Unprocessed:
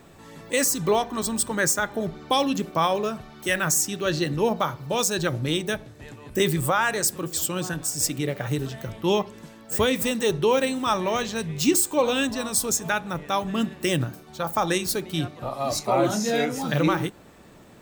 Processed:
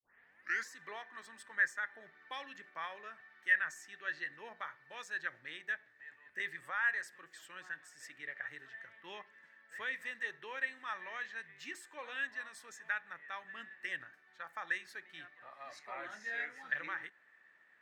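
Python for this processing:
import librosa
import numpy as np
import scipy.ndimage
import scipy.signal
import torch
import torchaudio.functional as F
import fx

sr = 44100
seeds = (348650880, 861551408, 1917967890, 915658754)

y = fx.tape_start_head(x, sr, length_s=0.74)
y = fx.bandpass_q(y, sr, hz=1800.0, q=9.9)
y = F.gain(torch.from_numpy(y), 1.0).numpy()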